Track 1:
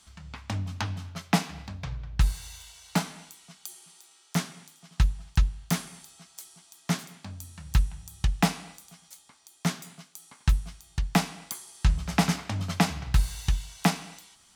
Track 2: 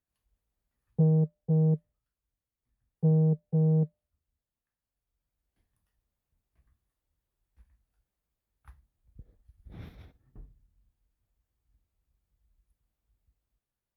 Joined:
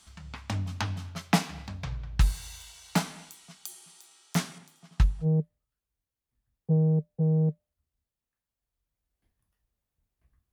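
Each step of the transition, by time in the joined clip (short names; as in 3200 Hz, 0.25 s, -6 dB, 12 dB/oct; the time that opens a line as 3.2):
track 1
4.58–5.27 high shelf 2200 Hz -7 dB
5.24 switch to track 2 from 1.58 s, crossfade 0.06 s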